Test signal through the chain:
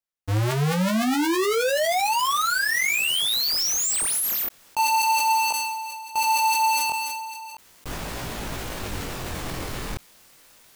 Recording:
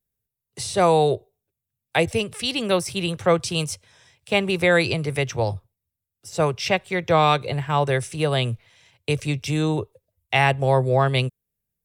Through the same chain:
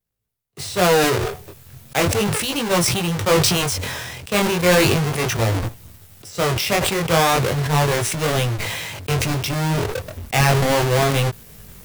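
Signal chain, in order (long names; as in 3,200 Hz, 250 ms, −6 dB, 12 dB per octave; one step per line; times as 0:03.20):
each half-wave held at its own peak
chorus effect 0.36 Hz, delay 17.5 ms, depth 6.9 ms
level that may fall only so fast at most 25 dB per second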